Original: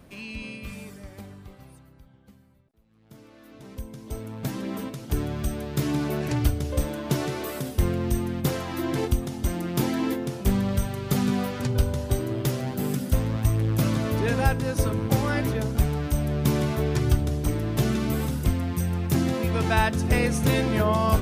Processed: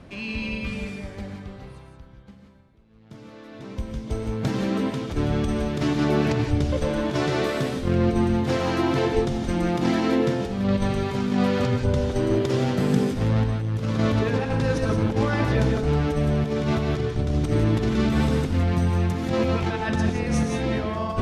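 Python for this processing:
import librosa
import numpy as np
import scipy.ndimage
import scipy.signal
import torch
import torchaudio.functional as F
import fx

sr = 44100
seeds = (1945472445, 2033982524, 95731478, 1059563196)

y = scipy.signal.sosfilt(scipy.signal.butter(2, 5200.0, 'lowpass', fs=sr, output='sos'), x)
y = fx.over_compress(y, sr, threshold_db=-26.0, ratio=-0.5)
y = fx.rev_gated(y, sr, seeds[0], gate_ms=200, shape='rising', drr_db=2.5)
y = y * 10.0 ** (3.0 / 20.0)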